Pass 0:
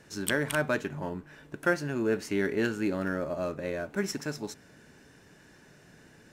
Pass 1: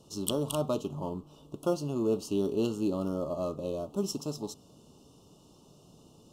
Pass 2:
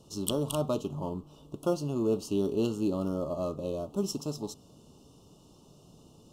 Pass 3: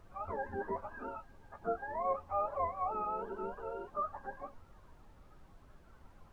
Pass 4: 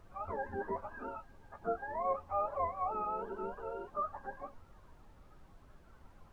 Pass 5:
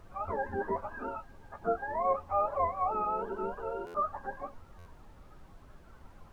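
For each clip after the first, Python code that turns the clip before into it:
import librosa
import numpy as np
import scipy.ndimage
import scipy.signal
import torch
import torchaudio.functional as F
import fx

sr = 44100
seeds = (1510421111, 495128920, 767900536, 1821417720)

y1 = scipy.signal.sosfilt(scipy.signal.ellip(3, 1.0, 40, [1200.0, 2900.0], 'bandstop', fs=sr, output='sos'), x)
y2 = fx.low_shelf(y1, sr, hz=110.0, db=4.5)
y3 = fx.octave_mirror(y2, sr, pivot_hz=490.0)
y3 = fx.lowpass_res(y3, sr, hz=1200.0, q=2.4)
y3 = fx.dmg_noise_colour(y3, sr, seeds[0], colour='brown', level_db=-47.0)
y3 = F.gain(torch.from_numpy(y3), -8.5).numpy()
y4 = y3
y5 = fx.buffer_glitch(y4, sr, at_s=(3.86, 4.78), block=512, repeats=6)
y5 = F.gain(torch.from_numpy(y5), 5.0).numpy()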